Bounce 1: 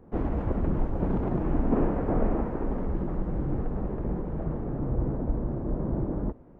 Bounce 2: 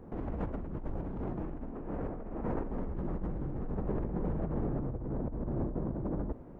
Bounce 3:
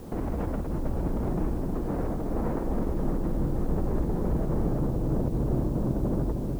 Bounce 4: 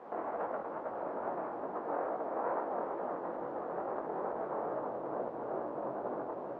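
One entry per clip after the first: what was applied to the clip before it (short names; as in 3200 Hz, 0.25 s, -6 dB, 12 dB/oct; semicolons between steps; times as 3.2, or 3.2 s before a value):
negative-ratio compressor -33 dBFS, ratio -1; gain -2.5 dB
limiter -29 dBFS, peak gain reduction 9 dB; added noise white -67 dBFS; darkening echo 0.315 s, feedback 76%, low-pass 890 Hz, level -5 dB; gain +8 dB
chorus 2.3 Hz, delay 16 ms, depth 7.8 ms; sample leveller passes 1; Butterworth band-pass 960 Hz, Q 0.9; gain +3 dB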